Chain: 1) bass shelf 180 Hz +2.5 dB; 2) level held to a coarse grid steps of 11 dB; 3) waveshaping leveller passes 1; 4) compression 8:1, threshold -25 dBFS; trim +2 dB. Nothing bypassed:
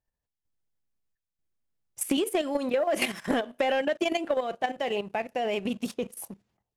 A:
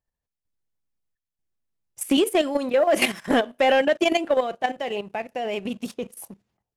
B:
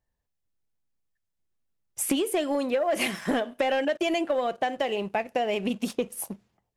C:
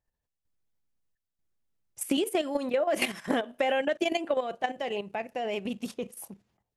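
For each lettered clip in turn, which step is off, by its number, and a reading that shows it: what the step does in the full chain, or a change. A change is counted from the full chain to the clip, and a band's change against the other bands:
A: 4, mean gain reduction 3.5 dB; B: 2, 8 kHz band +2.0 dB; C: 3, crest factor change +3.0 dB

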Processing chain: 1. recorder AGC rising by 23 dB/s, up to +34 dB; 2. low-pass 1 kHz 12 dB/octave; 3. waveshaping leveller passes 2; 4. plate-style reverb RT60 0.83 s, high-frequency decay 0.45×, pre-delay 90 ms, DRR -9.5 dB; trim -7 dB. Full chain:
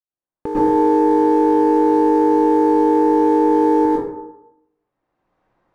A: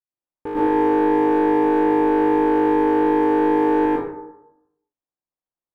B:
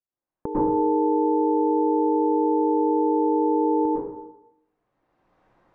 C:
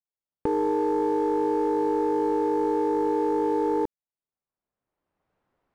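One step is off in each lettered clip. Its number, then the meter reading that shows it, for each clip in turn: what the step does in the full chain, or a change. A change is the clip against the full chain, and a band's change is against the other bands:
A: 1, 2 kHz band +9.0 dB; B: 3, loudness change -7.0 LU; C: 4, momentary loudness spread change -5 LU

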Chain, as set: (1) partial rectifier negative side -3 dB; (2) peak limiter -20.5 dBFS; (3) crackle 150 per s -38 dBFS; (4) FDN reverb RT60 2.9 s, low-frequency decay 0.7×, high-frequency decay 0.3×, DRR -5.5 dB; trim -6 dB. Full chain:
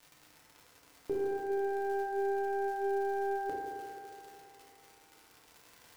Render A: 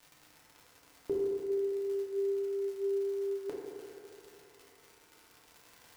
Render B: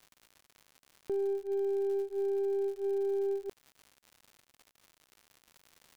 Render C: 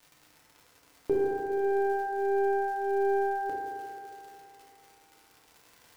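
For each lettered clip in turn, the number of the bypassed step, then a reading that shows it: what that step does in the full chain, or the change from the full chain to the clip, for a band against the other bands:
1, distortion -15 dB; 4, momentary loudness spread change -10 LU; 2, mean gain reduction 4.0 dB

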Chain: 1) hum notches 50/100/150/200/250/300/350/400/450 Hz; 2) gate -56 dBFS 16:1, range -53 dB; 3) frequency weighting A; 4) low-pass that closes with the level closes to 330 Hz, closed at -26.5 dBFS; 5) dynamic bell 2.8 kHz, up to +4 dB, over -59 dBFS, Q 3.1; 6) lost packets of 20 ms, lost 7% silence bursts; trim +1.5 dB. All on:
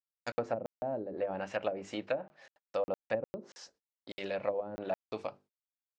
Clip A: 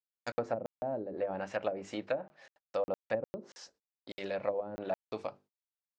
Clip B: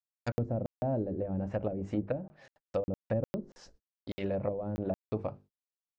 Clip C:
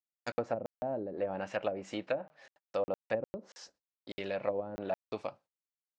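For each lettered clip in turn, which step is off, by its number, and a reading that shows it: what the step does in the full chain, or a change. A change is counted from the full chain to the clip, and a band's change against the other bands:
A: 5, 4 kHz band -1.5 dB; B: 3, 125 Hz band +18.5 dB; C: 1, momentary loudness spread change -1 LU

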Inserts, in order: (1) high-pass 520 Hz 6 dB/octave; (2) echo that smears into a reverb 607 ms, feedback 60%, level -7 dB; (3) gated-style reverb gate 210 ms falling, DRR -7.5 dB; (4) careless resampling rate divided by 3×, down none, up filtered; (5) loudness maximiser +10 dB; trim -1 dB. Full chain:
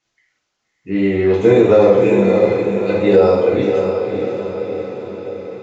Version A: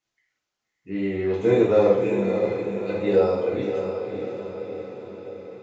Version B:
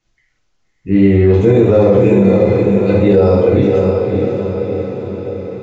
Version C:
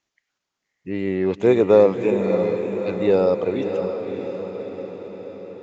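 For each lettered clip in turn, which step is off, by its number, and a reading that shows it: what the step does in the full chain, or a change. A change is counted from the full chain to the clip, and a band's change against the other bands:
5, crest factor change +4.0 dB; 1, 125 Hz band +10.0 dB; 3, momentary loudness spread change +3 LU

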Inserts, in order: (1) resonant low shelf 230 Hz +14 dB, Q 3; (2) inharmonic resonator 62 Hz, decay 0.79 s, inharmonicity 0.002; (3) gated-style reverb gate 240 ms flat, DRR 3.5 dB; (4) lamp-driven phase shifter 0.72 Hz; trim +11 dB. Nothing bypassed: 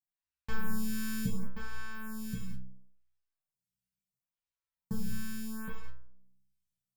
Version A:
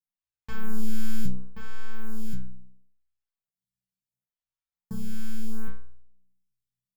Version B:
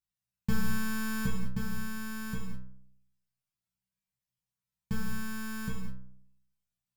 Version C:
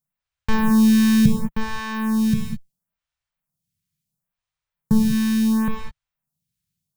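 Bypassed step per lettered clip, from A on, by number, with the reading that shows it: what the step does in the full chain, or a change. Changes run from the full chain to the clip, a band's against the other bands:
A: 3, momentary loudness spread change -2 LU; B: 4, 8 kHz band -2.0 dB; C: 2, 250 Hz band +5.5 dB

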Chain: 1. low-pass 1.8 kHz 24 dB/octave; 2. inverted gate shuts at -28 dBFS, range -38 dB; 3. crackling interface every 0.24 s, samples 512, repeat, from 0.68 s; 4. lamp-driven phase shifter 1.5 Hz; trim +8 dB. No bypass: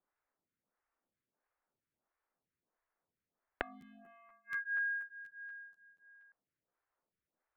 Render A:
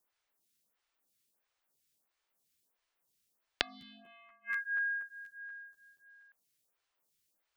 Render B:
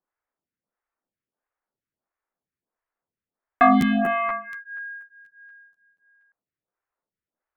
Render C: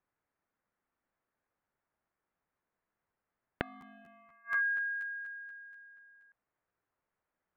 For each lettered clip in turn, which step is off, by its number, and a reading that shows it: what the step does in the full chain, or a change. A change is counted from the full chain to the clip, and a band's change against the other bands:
1, 4 kHz band +19.5 dB; 2, momentary loudness spread change -3 LU; 4, 250 Hz band +2.5 dB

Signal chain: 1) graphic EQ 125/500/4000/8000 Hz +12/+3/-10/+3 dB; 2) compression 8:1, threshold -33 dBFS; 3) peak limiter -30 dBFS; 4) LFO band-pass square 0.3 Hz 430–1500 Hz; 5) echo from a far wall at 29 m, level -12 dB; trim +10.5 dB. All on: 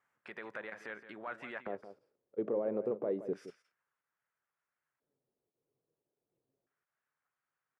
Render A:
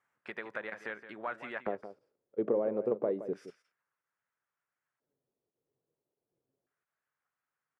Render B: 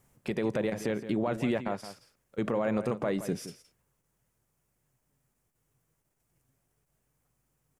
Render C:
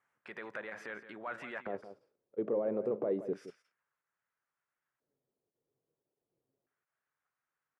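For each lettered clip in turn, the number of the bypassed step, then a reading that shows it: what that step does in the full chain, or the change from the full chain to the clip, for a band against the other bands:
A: 3, mean gain reduction 1.5 dB; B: 4, 125 Hz band +11.0 dB; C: 2, mean gain reduction 6.5 dB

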